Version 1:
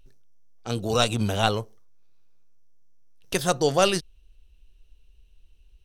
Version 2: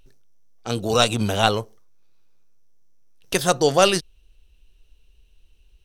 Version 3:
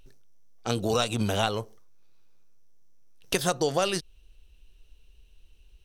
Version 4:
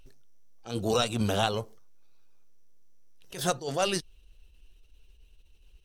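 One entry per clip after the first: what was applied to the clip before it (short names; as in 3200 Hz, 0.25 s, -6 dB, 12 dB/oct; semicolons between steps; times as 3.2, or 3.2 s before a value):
low shelf 160 Hz -5 dB; gain +4.5 dB
compressor 6:1, threshold -22 dBFS, peak gain reduction 11.5 dB
bin magnitudes rounded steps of 15 dB; attack slew limiter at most 160 dB/s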